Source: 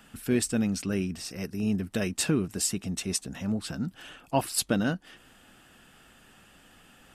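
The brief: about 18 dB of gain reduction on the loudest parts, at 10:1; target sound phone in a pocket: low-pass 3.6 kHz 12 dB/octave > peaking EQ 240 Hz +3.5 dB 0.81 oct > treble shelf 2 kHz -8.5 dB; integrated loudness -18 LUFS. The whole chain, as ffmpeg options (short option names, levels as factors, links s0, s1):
-af "acompressor=threshold=0.0112:ratio=10,lowpass=3600,equalizer=f=240:t=o:w=0.81:g=3.5,highshelf=f=2000:g=-8.5,volume=17.8"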